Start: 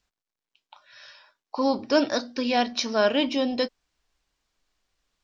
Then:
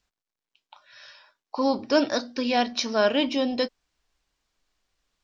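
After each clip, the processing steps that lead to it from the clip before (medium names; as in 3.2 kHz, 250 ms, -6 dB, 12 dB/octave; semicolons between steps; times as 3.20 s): no audible change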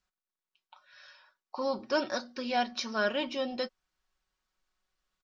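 peaking EQ 1.3 kHz +6 dB 0.76 oct; comb 5.4 ms, depth 51%; trim -9 dB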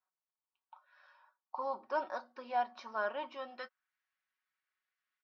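band-pass sweep 930 Hz -> 1.9 kHz, 3.15–3.96 s; trim +1 dB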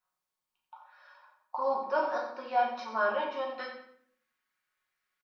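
feedback delay 90 ms, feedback 27%, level -10.5 dB; simulated room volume 100 m³, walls mixed, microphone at 0.94 m; trim +3 dB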